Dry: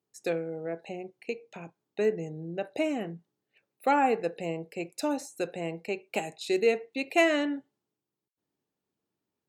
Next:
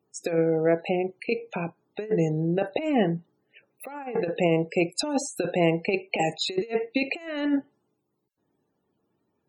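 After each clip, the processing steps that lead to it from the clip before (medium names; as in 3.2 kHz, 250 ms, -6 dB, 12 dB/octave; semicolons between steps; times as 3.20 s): loudest bins only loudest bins 64; compressor with a negative ratio -32 dBFS, ratio -0.5; trim +8.5 dB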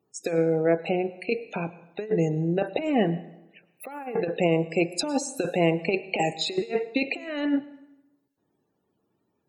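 plate-style reverb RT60 0.96 s, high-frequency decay 0.8×, pre-delay 90 ms, DRR 17.5 dB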